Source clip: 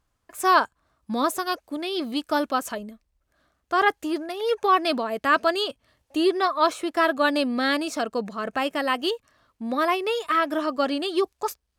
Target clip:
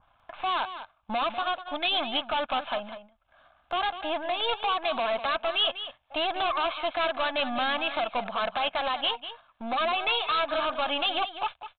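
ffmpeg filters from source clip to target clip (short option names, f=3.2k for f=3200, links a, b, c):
-filter_complex "[0:a]aeval=exprs='if(lt(val(0),0),0.447*val(0),val(0))':c=same,lowshelf=f=540:t=q:w=3:g=-9.5,asplit=2[a][b];[b]acompressor=threshold=-30dB:ratio=6,volume=2.5dB[c];[a][c]amix=inputs=2:normalize=0,alimiter=limit=-15.5dB:level=0:latency=1:release=70,acompressor=mode=upward:threshold=-40dB:ratio=2.5,aresample=8000,volume=25dB,asoftclip=hard,volume=-25dB,aresample=44100,aecho=1:1:198:0.266,agate=range=-8dB:threshold=-49dB:ratio=16:detection=peak,bandreject=f=1.9k:w=5.8,adynamicequalizer=threshold=0.00631:dfrequency=1700:dqfactor=0.7:tfrequency=1700:tqfactor=0.7:attack=5:release=100:ratio=0.375:range=3:mode=boostabove:tftype=highshelf"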